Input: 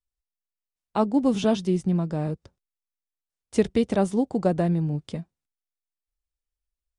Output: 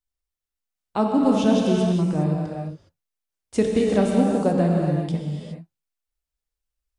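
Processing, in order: non-linear reverb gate 0.44 s flat, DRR -1 dB

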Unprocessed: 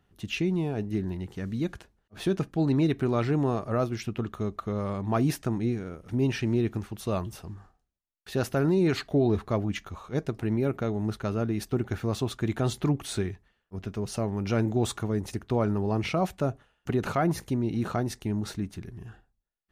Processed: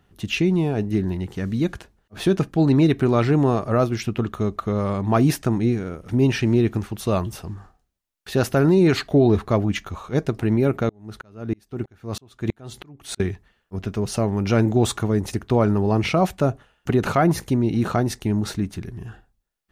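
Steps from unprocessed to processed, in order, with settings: 10.89–13.2 dB-ramp tremolo swelling 3.1 Hz, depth 37 dB; gain +7.5 dB

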